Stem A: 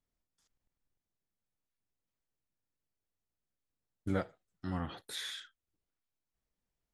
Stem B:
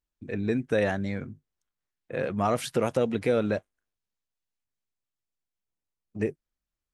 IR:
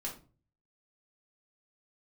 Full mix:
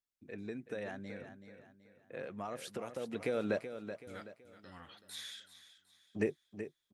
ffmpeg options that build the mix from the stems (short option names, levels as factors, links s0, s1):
-filter_complex "[0:a]tiltshelf=f=970:g=-8.5,volume=0.251,asplit=2[s0][s1];[s1]volume=0.211[s2];[1:a]highpass=f=240:p=1,acompressor=threshold=0.0501:ratio=6,volume=0.944,afade=t=in:st=2.97:d=0.72:silence=0.281838,asplit=2[s3][s4];[s4]volume=0.316[s5];[s2][s5]amix=inputs=2:normalize=0,aecho=0:1:378|756|1134|1512|1890:1|0.38|0.144|0.0549|0.0209[s6];[s0][s3][s6]amix=inputs=3:normalize=0"